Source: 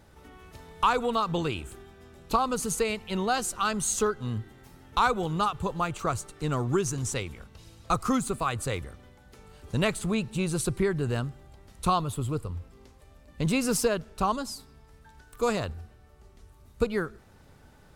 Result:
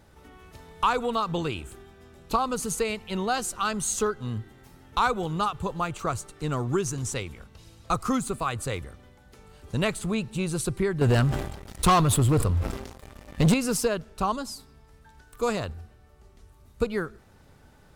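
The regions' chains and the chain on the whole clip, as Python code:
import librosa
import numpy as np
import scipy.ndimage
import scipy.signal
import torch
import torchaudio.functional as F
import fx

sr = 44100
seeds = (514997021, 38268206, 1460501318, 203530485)

y = fx.chain(x, sr, fx.leveller(passes=3),
    fx.sustainer(db_per_s=64.0), at=(11.01, 13.54))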